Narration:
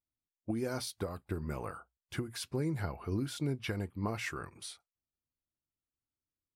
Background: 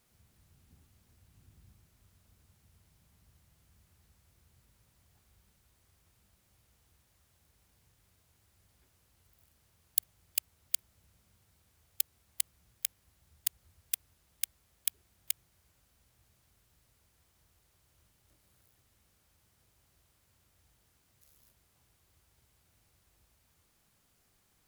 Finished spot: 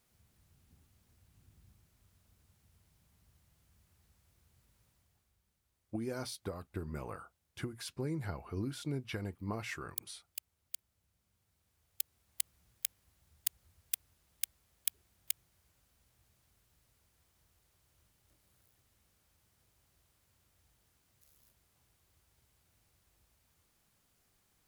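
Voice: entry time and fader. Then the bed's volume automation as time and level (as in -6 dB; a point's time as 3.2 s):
5.45 s, -3.5 dB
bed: 4.87 s -3 dB
5.42 s -11.5 dB
11.1 s -11.5 dB
12.53 s -2.5 dB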